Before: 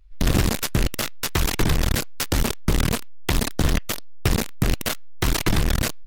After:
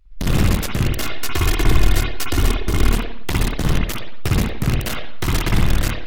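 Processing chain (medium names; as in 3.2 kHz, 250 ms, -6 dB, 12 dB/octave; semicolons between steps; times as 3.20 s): 0.85–2.91 s: comb 2.8 ms, depth 54%; reverberation, pre-delay 54 ms, DRR -1.5 dB; trim -2 dB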